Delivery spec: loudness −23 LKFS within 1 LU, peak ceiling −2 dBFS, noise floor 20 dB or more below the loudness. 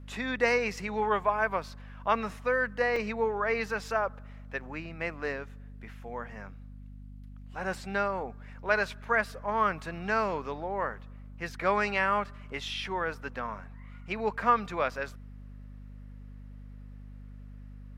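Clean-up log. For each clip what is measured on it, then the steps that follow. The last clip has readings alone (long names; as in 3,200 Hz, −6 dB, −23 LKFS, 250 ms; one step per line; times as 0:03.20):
number of dropouts 1; longest dropout 3.3 ms; mains hum 50 Hz; hum harmonics up to 250 Hz; level of the hum −43 dBFS; integrated loudness −31.0 LKFS; sample peak −10.0 dBFS; target loudness −23.0 LKFS
→ repair the gap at 0:02.96, 3.3 ms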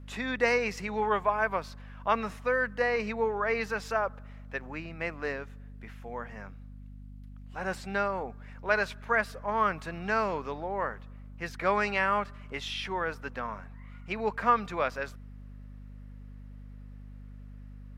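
number of dropouts 0; mains hum 50 Hz; hum harmonics up to 250 Hz; level of the hum −43 dBFS
→ mains-hum notches 50/100/150/200/250 Hz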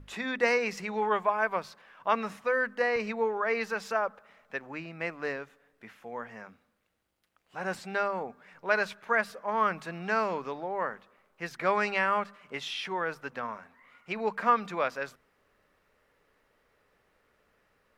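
mains hum none found; integrated loudness −31.0 LKFS; sample peak −10.5 dBFS; target loudness −23.0 LKFS
→ level +8 dB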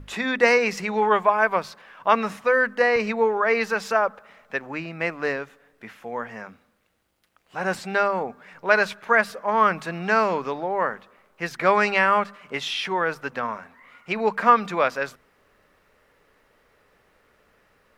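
integrated loudness −23.0 LKFS; sample peak −2.5 dBFS; background noise floor −63 dBFS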